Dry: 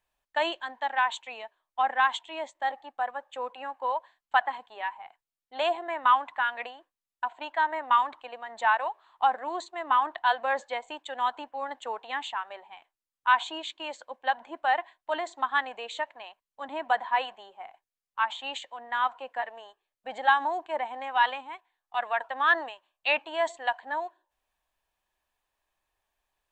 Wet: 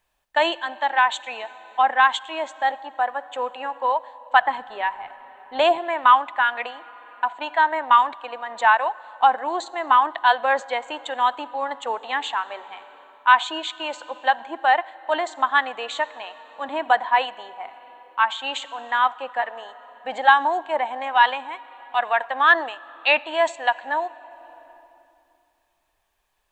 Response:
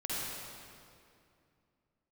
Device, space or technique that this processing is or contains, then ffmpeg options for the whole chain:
compressed reverb return: -filter_complex "[0:a]asplit=2[a][b];[1:a]atrim=start_sample=2205[c];[b][c]afir=irnorm=-1:irlink=0,acompressor=threshold=-34dB:ratio=4,volume=-13.5dB[d];[a][d]amix=inputs=2:normalize=0,asettb=1/sr,asplit=3[e][f][g];[e]atrim=end=4.414[h];[f]atrim=start=4.41:end=5.78,asetpts=PTS-STARTPTS,afade=t=in:d=0.004:c=qsin,afade=t=out:st=1.366:d=0.004:c=qsin,lowshelf=f=290:g=11[i];[g]atrim=start=5.776[j];[h][i]acrossfade=d=0.004:c1=hsin:c2=qsin[k];[k][j]acrossfade=d=0.004:c1=qsin:c2=hsin,volume=7dB"

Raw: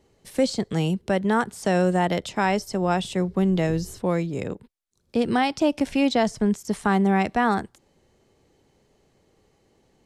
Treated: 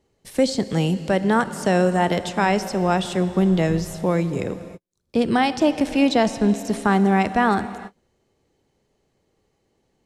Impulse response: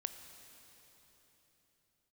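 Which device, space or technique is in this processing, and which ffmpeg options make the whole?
keyed gated reverb: -filter_complex "[0:a]asplit=3[a][b][c];[1:a]atrim=start_sample=2205[d];[b][d]afir=irnorm=-1:irlink=0[e];[c]apad=whole_len=443334[f];[e][f]sidechaingate=range=-53dB:threshold=-56dB:ratio=16:detection=peak,volume=6dB[g];[a][g]amix=inputs=2:normalize=0,volume=-5.5dB"

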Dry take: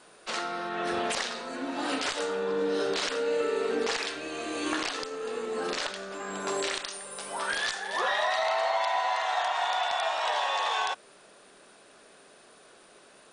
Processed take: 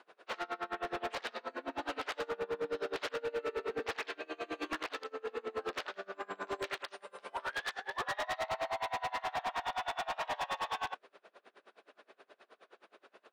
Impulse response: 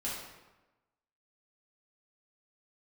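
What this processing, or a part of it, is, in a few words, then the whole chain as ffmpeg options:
helicopter radio: -af "highpass=350,lowpass=2.8k,aeval=exprs='val(0)*pow(10,-29*(0.5-0.5*cos(2*PI*9.5*n/s))/20)':c=same,asoftclip=type=hard:threshold=-33.5dB,volume=2dB"

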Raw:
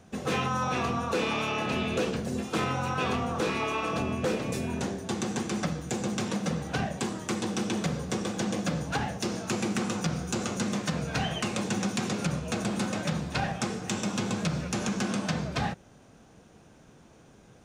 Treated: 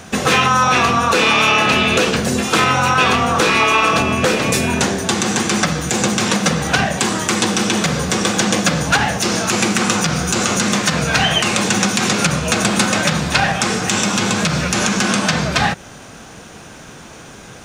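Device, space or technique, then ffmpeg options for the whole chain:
mastering chain: -af "equalizer=f=1.4k:t=o:w=1.7:g=3.5,acompressor=threshold=-31dB:ratio=2.5,tiltshelf=f=1.4k:g=-4.5,alimiter=level_in=20.5dB:limit=-1dB:release=50:level=0:latency=1,volume=-1dB"

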